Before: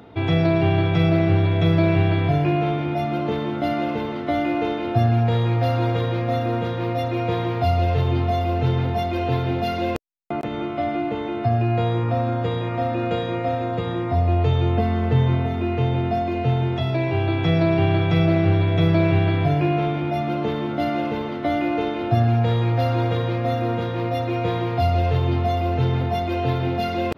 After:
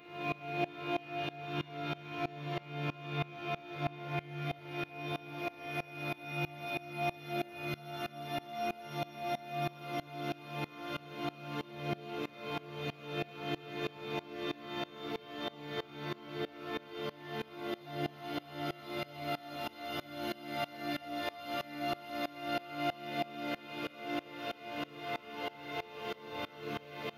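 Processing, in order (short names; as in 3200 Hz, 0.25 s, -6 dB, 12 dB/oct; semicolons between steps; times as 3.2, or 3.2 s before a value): Paulstretch 19×, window 0.50 s, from 2.6; tilt +3.5 dB/oct; reverb RT60 5.5 s, pre-delay 48 ms, DRR 2 dB; dB-ramp tremolo swelling 3.1 Hz, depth 23 dB; gain -8 dB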